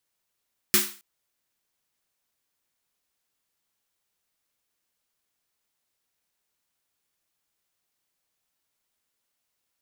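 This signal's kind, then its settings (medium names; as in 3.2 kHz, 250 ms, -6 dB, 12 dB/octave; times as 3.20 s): snare drum length 0.27 s, tones 210 Hz, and 360 Hz, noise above 1.1 kHz, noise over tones 10 dB, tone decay 0.31 s, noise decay 0.38 s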